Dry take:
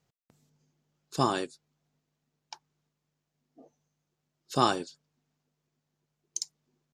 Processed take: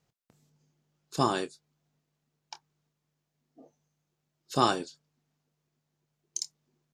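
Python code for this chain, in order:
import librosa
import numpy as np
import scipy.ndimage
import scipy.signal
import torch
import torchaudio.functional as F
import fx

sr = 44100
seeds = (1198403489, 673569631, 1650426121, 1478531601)

y = fx.doubler(x, sr, ms=26.0, db=-12.0)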